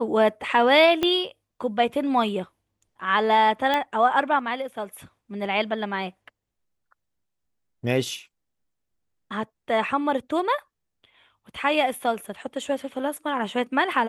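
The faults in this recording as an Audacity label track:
1.030000	1.030000	click −10 dBFS
3.740000	3.740000	click −11 dBFS

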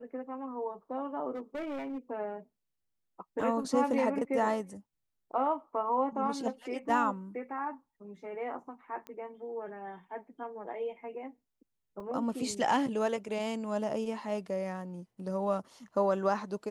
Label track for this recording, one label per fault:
1.340000	1.980000	clipping −34 dBFS
3.410000	3.410000	drop-out 2.7 ms
9.070000	9.070000	click −29 dBFS
12.000000	12.000000	drop-out 2.5 ms

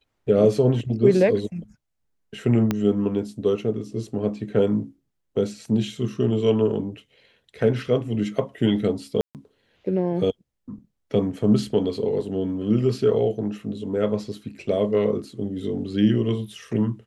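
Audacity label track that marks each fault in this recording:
2.710000	2.710000	click −9 dBFS
9.210000	9.350000	drop-out 138 ms

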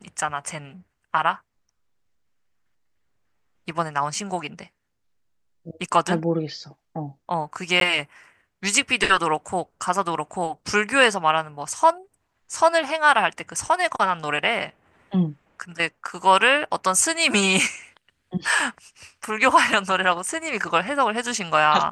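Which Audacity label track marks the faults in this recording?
7.800000	7.810000	drop-out

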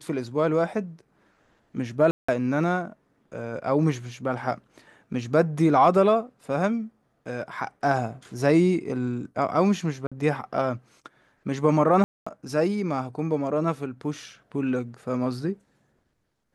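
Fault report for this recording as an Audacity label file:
2.110000	2.290000	drop-out 175 ms
10.070000	10.120000	drop-out 46 ms
12.040000	12.270000	drop-out 225 ms

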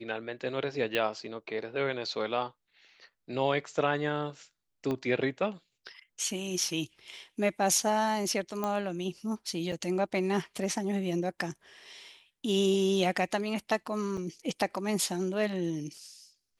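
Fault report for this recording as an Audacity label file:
0.950000	0.950000	click −16 dBFS
4.910000	4.910000	click −21 dBFS
8.640000	8.640000	click −18 dBFS
9.720000	9.720000	drop-out 3.9 ms
14.170000	14.180000	drop-out 5.6 ms

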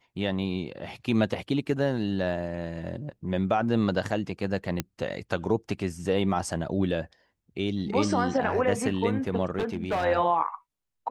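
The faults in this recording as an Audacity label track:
4.800000	4.800000	click −11 dBFS
9.590000	10.050000	clipping −23.5 dBFS

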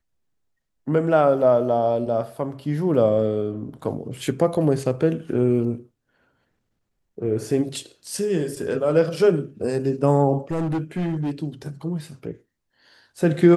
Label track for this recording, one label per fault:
10.510000	11.310000	clipping −21 dBFS

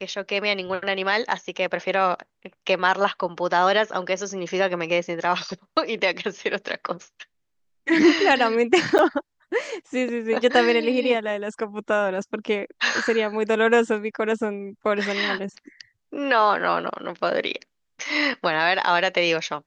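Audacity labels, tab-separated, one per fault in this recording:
8.980000	8.990000	drop-out 9 ms

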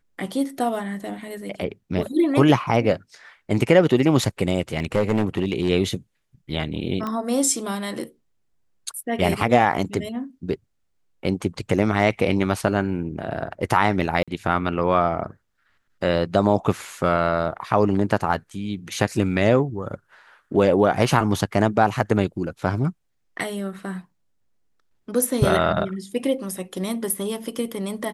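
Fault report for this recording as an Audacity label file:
4.770000	5.700000	clipping −14.5 dBFS
7.070000	7.070000	click −16 dBFS
14.230000	14.280000	drop-out 46 ms

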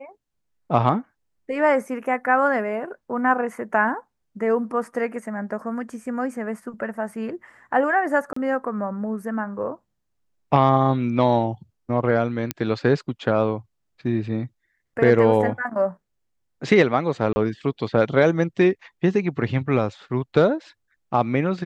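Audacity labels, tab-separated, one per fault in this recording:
8.330000	8.360000	drop-out 34 ms
12.510000	12.510000	click −7 dBFS
17.330000	17.360000	drop-out 30 ms

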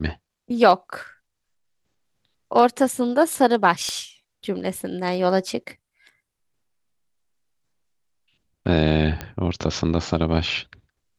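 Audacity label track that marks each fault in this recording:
3.890000	3.890000	click −16 dBFS
9.210000	9.210000	click −14 dBFS

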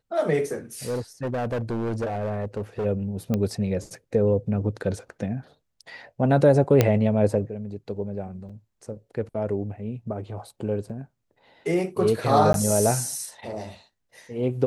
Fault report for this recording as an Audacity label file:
0.860000	2.860000	clipping −23.5 dBFS
3.340000	3.340000	click −13 dBFS
6.810000	6.810000	click −4 dBFS
8.490000	8.500000	drop-out 5.4 ms
10.890000	10.900000	drop-out 5.9 ms
12.530000	12.540000	drop-out 12 ms

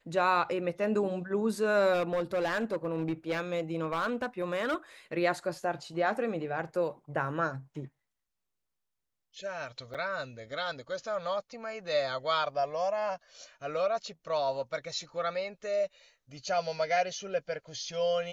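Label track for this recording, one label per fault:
1.930000	4.750000	clipping −25.5 dBFS
9.940000	9.950000	drop-out 6.6 ms

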